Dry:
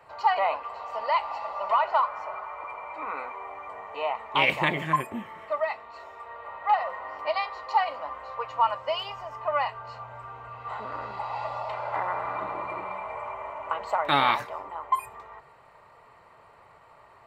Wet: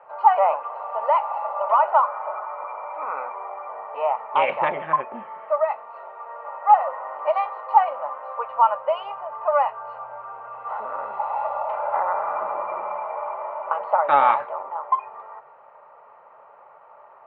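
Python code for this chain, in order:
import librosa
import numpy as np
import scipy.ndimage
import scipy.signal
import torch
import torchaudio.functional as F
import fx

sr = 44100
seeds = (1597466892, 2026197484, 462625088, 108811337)

y = fx.cabinet(x, sr, low_hz=280.0, low_slope=12, high_hz=2400.0, hz=(310.0, 570.0, 840.0, 1300.0, 2000.0), db=(-7, 9, 8, 6, -6))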